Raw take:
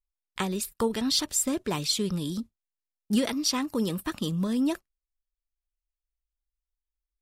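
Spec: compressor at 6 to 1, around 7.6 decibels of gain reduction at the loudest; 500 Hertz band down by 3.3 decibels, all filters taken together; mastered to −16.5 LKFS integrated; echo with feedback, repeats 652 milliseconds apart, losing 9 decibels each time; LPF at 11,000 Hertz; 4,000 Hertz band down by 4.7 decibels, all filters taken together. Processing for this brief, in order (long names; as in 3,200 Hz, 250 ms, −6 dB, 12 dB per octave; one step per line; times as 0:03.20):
low-pass filter 11,000 Hz
parametric band 500 Hz −4 dB
parametric band 4,000 Hz −5.5 dB
downward compressor 6 to 1, threshold −29 dBFS
repeating echo 652 ms, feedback 35%, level −9 dB
level +17.5 dB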